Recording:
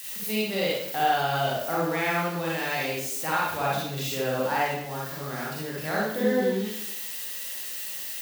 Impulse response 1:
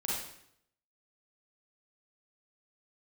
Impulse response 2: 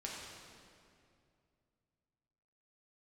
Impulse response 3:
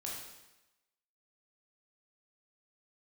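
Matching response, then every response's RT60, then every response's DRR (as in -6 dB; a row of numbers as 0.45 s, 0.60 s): 1; 0.70 s, 2.4 s, 1.0 s; -6.0 dB, -4.5 dB, -4.0 dB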